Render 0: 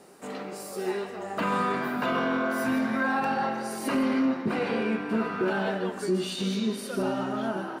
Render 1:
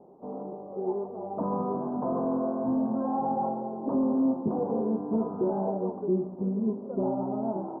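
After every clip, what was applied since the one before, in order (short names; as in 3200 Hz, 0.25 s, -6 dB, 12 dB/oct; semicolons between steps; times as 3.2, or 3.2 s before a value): steep low-pass 960 Hz 48 dB/oct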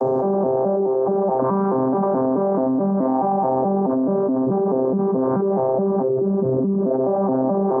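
arpeggiated vocoder bare fifth, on C3, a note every 0.214 s; tone controls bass -12 dB, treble +8 dB; fast leveller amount 100%; gain +7.5 dB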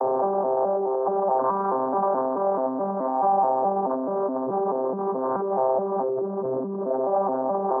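limiter -19 dBFS, peak gain reduction 9.5 dB; band-pass 1000 Hz, Q 1.2; gain +8 dB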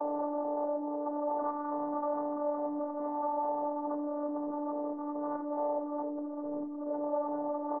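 robotiser 294 Hz; doubler 37 ms -9 dB; echo 84 ms -14.5 dB; gain -7.5 dB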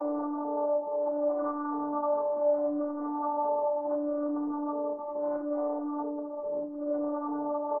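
on a send at -6.5 dB: reverb, pre-delay 3 ms; on the sum: endless flanger 3.5 ms -0.72 Hz; gain +4.5 dB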